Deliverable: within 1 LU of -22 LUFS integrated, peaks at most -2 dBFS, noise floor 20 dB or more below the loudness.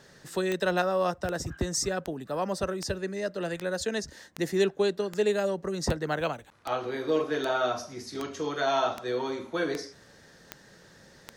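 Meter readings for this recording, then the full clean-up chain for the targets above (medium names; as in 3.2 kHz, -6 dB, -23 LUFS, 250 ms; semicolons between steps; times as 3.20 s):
clicks found 15; loudness -30.0 LUFS; peak level -13.5 dBFS; loudness target -22.0 LUFS
-> de-click; trim +8 dB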